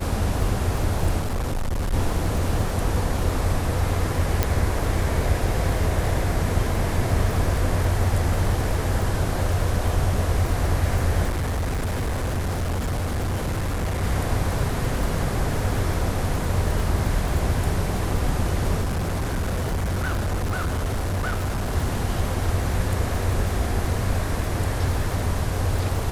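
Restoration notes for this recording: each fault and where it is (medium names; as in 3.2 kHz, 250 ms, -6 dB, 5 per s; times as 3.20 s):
crackle 40 per s -27 dBFS
1.20–1.94 s: clipped -21.5 dBFS
4.43 s: pop -5 dBFS
11.28–14.04 s: clipped -21.5 dBFS
18.81–21.76 s: clipped -21 dBFS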